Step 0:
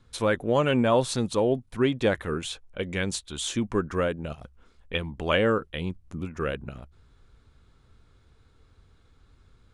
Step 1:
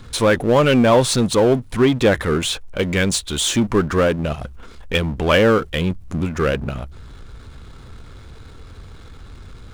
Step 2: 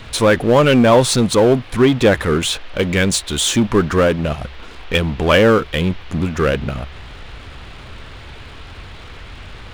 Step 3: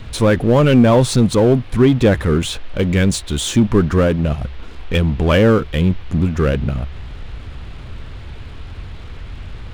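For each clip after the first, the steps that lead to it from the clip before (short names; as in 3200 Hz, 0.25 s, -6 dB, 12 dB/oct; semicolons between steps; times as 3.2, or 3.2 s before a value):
power-law curve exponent 0.7; gain +5.5 dB
band noise 260–3500 Hz -44 dBFS; gain +2.5 dB
low shelf 310 Hz +11 dB; gain -5 dB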